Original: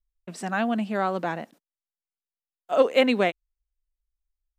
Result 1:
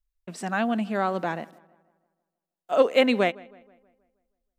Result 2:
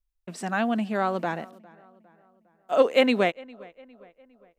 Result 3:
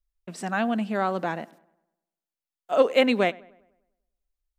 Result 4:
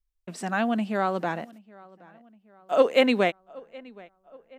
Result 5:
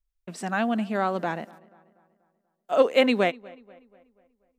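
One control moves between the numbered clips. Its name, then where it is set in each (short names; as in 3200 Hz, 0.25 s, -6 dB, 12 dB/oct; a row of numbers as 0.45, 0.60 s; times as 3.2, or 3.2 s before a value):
darkening echo, time: 0.159, 0.406, 0.1, 0.772, 0.242 s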